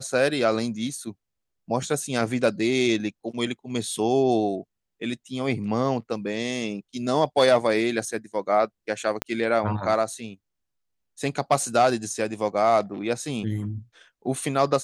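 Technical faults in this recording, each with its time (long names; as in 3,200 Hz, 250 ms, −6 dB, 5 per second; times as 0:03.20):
0:09.22: click −10 dBFS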